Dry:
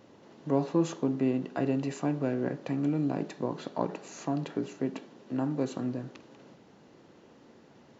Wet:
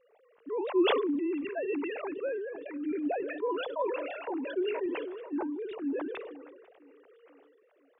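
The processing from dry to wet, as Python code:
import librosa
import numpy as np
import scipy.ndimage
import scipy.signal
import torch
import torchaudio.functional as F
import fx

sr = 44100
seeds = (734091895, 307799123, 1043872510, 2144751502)

y = fx.sine_speech(x, sr)
y = fx.peak_eq(y, sr, hz=330.0, db=-12.5, octaves=0.37, at=(1.34, 3.42), fade=0.02)
y = fx.rider(y, sr, range_db=3, speed_s=0.5)
y = fx.tremolo_random(y, sr, seeds[0], hz=3.5, depth_pct=55)
y = fx.echo_feedback(y, sr, ms=492, feedback_pct=58, wet_db=-22.5)
y = fx.sustainer(y, sr, db_per_s=34.0)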